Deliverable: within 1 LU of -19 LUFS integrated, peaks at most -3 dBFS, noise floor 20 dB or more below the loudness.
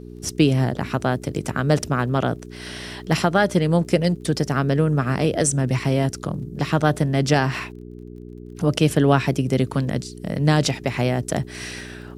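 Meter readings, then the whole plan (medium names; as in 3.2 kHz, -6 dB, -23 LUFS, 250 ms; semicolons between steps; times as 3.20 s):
tick rate 22 per s; hum 60 Hz; highest harmonic 420 Hz; hum level -34 dBFS; loudness -21.5 LUFS; peak level -3.0 dBFS; loudness target -19.0 LUFS
-> de-click; de-hum 60 Hz, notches 7; trim +2.5 dB; peak limiter -3 dBFS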